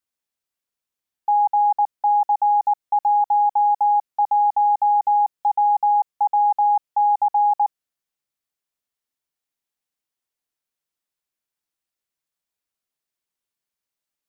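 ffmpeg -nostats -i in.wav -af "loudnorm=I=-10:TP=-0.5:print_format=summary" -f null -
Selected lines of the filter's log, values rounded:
Input Integrated:    -19.2 LUFS
Input True Peak:     -13.5 dBTP
Input LRA:             3.2 LU
Input Threshold:     -29.2 LUFS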